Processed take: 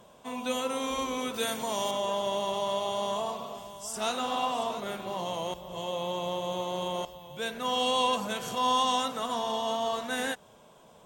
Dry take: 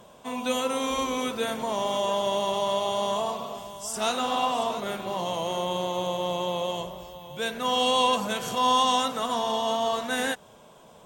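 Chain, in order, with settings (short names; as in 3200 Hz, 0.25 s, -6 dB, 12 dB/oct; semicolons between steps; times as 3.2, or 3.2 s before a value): 1.34–1.91 high shelf 3400 Hz +10.5 dB; 5.54–7.05 reverse; gain -4 dB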